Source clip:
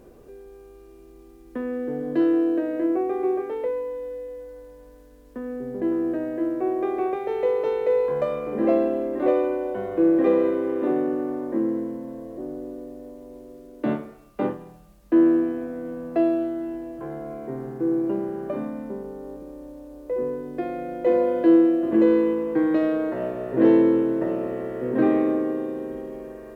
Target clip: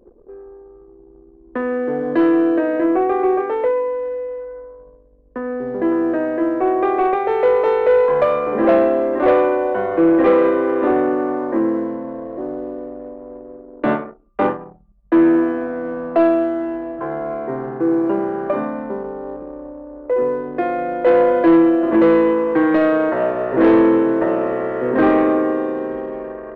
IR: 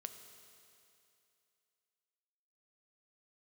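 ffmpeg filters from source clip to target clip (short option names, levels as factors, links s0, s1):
-af "anlmdn=0.158,equalizer=f=1200:w=0.48:g=13,acontrast=82,volume=0.596"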